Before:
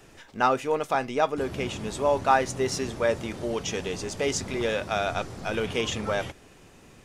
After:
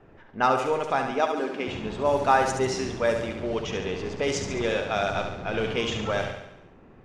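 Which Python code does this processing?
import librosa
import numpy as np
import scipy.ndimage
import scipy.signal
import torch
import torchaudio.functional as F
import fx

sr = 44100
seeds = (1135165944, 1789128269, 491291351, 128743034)

y = fx.env_lowpass(x, sr, base_hz=1300.0, full_db=-19.0)
y = fx.cheby1_highpass(y, sr, hz=250.0, order=3, at=(1.11, 1.68))
y = fx.echo_feedback(y, sr, ms=70, feedback_pct=57, wet_db=-6.5)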